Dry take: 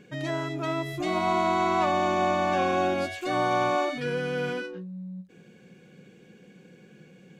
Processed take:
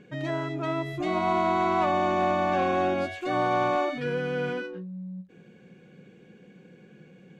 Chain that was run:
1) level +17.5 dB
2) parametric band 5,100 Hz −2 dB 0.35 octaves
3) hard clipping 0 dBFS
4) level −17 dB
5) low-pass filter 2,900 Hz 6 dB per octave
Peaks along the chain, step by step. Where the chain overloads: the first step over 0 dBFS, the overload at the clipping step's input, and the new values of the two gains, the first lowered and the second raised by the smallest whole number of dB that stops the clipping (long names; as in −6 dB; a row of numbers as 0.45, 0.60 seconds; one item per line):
+4.0, +4.0, 0.0, −17.0, −17.0 dBFS
step 1, 4.0 dB
step 1 +13.5 dB, step 4 −13 dB